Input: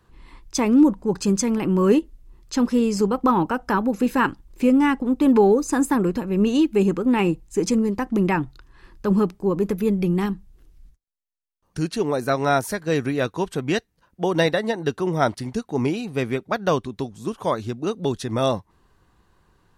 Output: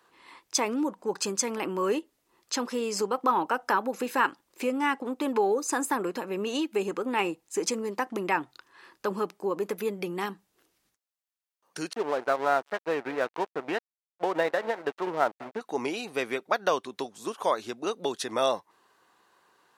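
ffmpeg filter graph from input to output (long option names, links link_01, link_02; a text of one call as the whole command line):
ffmpeg -i in.wav -filter_complex "[0:a]asettb=1/sr,asplit=3[link_01][link_02][link_03];[link_01]atrim=end=11.934[link_04];[link_02]atrim=start=11.93:end=15.61,asetpts=PTS-STARTPTS,afade=type=in:duration=0.004:curve=qsin,afade=type=out:start_time=3.676:duration=0.004:curve=qsin,lowpass=1800,aecho=1:1:201:0.075,atrim=end_sample=162288,aeval=exprs='sgn(val(0))*max(abs(val(0))-0.02,0)':channel_layout=same[link_05];[link_03]atrim=start=15.606[link_06];[link_04][link_05]acrossfade=duration=0.004:curve1=hsin:curve2=qsin[link_07];[link_07][link_06]acrossfade=duration=0.004:curve1=qsin:curve2=hsin,acompressor=threshold=-23dB:ratio=2,highpass=500,volume=2dB" out.wav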